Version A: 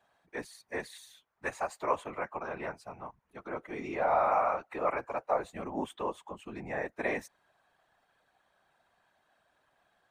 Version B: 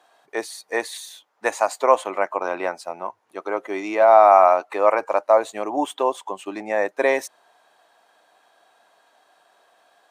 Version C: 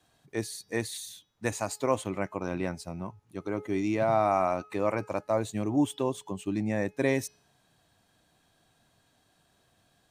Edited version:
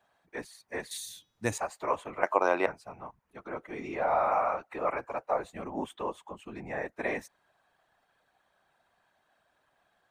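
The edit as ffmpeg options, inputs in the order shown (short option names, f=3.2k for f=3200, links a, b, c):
-filter_complex "[0:a]asplit=3[a][b][c];[a]atrim=end=0.912[d];[2:a]atrim=start=0.908:end=1.582[e];[b]atrim=start=1.578:end=2.232[f];[1:a]atrim=start=2.228:end=2.662[g];[c]atrim=start=2.658[h];[d][e]acrossfade=d=0.004:c1=hsin:c2=hsin[i];[i][f]acrossfade=d=0.004:c1=hsin:c2=hsin[j];[j][g]acrossfade=d=0.004:c1=hsin:c2=hsin[k];[k][h]acrossfade=d=0.004:c1=hsin:c2=hsin"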